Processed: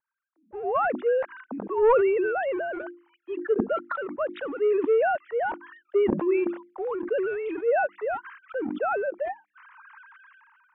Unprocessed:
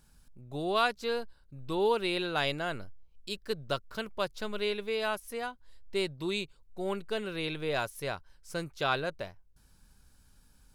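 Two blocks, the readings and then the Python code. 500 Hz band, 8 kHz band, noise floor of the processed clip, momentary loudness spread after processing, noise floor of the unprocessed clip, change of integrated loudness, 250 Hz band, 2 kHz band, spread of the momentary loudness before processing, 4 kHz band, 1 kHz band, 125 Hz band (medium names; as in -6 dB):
+9.5 dB, under -30 dB, -77 dBFS, 13 LU, -63 dBFS, +7.0 dB, +7.0 dB, +3.0 dB, 13 LU, under -15 dB, +6.0 dB, -4.5 dB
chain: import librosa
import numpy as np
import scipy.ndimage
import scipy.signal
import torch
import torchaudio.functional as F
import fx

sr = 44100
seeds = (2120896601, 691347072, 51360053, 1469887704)

y = fx.sine_speech(x, sr)
y = scipy.signal.sosfilt(scipy.signal.ellip(4, 1.0, 40, 200.0, 'highpass', fs=sr, output='sos'), y)
y = fx.hum_notches(y, sr, base_hz=50, count=7)
y = fx.leveller(y, sr, passes=2)
y = fx.vibrato(y, sr, rate_hz=1.2, depth_cents=23.0)
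y = scipy.ndimage.gaussian_filter1d(y, 4.5, mode='constant')
y = fx.sustainer(y, sr, db_per_s=26.0)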